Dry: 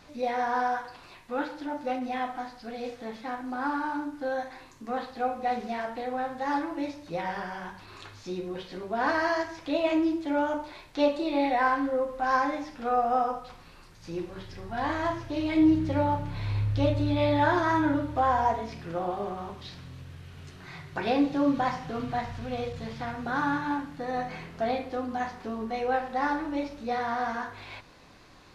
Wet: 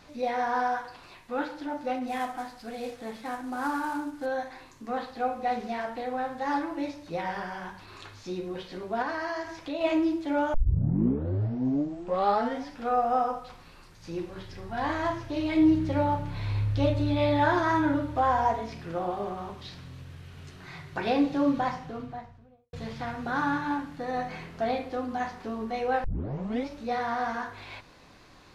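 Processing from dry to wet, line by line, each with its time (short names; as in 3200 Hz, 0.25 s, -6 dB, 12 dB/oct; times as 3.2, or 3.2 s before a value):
2.07–4.26 CVSD 64 kbps
9.02–9.81 compressor 2:1, threshold -33 dBFS
10.54 tape start 2.26 s
21.4–22.73 studio fade out
26.04 tape start 0.63 s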